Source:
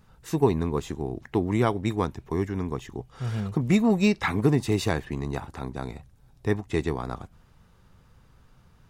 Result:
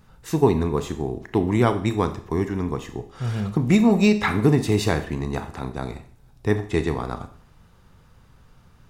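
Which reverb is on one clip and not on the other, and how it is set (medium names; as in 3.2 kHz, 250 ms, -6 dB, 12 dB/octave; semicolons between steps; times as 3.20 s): Schroeder reverb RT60 0.51 s, combs from 26 ms, DRR 9 dB; trim +3.5 dB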